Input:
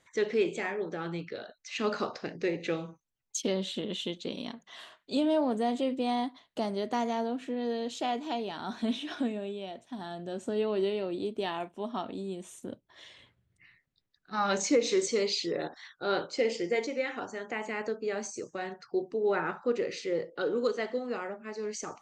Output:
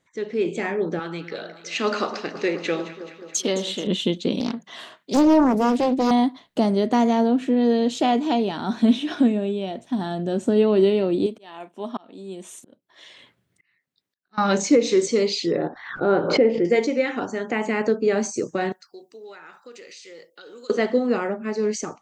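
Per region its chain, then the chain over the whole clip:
0:00.99–0:03.87: high-pass filter 790 Hz 6 dB per octave + delay that swaps between a low-pass and a high-pass 107 ms, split 1,500 Hz, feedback 79%, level −11.5 dB
0:04.40–0:06.11: high-pass filter 110 Hz 24 dB per octave + highs frequency-modulated by the lows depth 0.71 ms
0:11.26–0:14.38: high-pass filter 580 Hz 6 dB per octave + volume swells 679 ms
0:15.59–0:16.65: low-pass filter 1,500 Hz + background raised ahead of every attack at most 75 dB per second
0:18.72–0:20.70: first difference + downward compressor 5 to 1, threshold −50 dBFS
whole clip: parametric band 210 Hz +7.5 dB 2.1 octaves; automatic gain control gain up to 15 dB; level −5.5 dB

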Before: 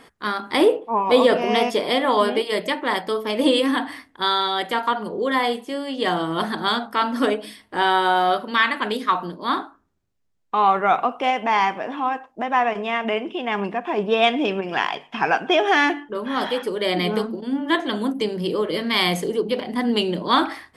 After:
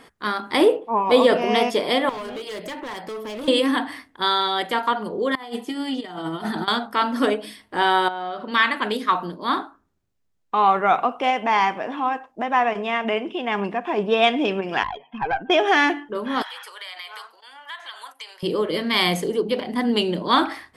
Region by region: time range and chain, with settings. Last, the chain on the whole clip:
0:02.09–0:03.48: downward compressor 3 to 1, threshold −28 dBFS + gain into a clipping stage and back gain 28.5 dB
0:05.35–0:06.68: compressor whose output falls as the input rises −27 dBFS, ratio −0.5 + notch comb filter 550 Hz
0:08.08–0:08.52: high-frequency loss of the air 100 metres + downward compressor 10 to 1, threshold −25 dBFS
0:14.83–0:15.50: expanding power law on the bin magnitudes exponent 2.1 + tube saturation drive 13 dB, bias 0.7
0:16.42–0:18.43: high-pass filter 960 Hz 24 dB per octave + downward compressor 4 to 1, threshold −33 dBFS
whole clip: no processing

